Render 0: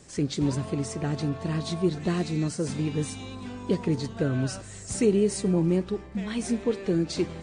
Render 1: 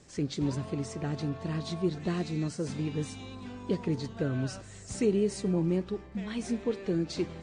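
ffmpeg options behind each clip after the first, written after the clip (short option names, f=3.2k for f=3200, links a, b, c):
-af "lowpass=7.3k,volume=-4.5dB"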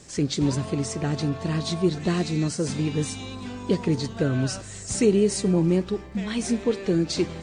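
-af "highshelf=f=4.6k:g=7.5,volume=7dB"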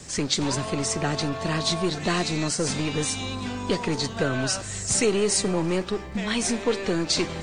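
-filter_complex "[0:a]acrossover=split=270|540|2500[a][b][c][d];[a]acompressor=threshold=-37dB:ratio=5[e];[b]aeval=exprs='(tanh(79.4*val(0)+0.8)-tanh(0.8))/79.4':c=same[f];[e][f][c][d]amix=inputs=4:normalize=0,volume=6.5dB"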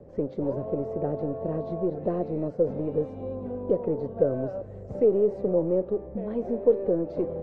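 -af "lowpass=f=530:t=q:w=4.9,volume=-6dB"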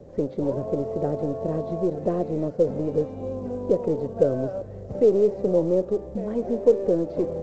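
-af "volume=3dB" -ar 16000 -c:a pcm_alaw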